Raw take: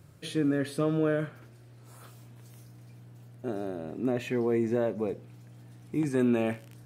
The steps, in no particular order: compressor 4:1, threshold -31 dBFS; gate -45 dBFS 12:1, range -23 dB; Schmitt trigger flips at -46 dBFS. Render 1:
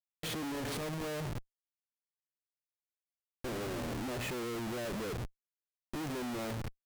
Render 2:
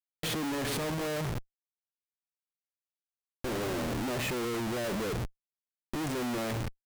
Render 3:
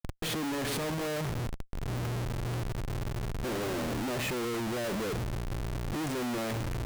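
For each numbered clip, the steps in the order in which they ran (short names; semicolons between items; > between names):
gate > compressor > Schmitt trigger; gate > Schmitt trigger > compressor; Schmitt trigger > gate > compressor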